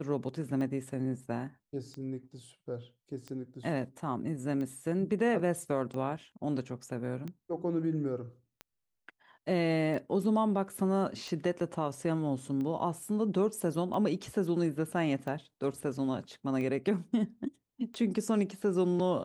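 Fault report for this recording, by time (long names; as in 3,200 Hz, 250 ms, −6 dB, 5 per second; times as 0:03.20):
scratch tick 45 rpm −28 dBFS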